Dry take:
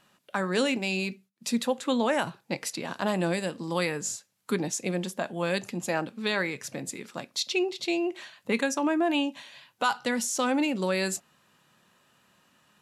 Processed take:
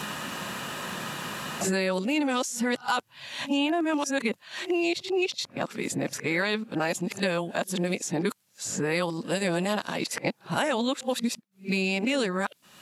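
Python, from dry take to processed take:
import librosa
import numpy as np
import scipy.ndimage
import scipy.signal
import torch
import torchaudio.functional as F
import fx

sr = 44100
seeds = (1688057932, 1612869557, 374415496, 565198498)

y = x[::-1].copy()
y = fx.band_squash(y, sr, depth_pct=100)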